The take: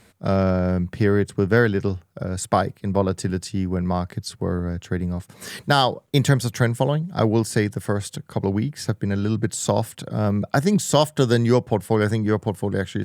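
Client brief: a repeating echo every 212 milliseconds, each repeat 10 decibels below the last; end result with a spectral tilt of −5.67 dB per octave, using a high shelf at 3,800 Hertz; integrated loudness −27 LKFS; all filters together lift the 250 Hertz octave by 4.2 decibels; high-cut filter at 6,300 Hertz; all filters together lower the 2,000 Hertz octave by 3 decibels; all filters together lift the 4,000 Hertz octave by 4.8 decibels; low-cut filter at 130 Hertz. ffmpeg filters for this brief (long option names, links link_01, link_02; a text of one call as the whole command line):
ffmpeg -i in.wav -af "highpass=130,lowpass=6300,equalizer=frequency=250:width_type=o:gain=6.5,equalizer=frequency=2000:width_type=o:gain=-6.5,highshelf=frequency=3800:gain=3.5,equalizer=frequency=4000:width_type=o:gain=7,aecho=1:1:212|424|636|848:0.316|0.101|0.0324|0.0104,volume=-7dB" out.wav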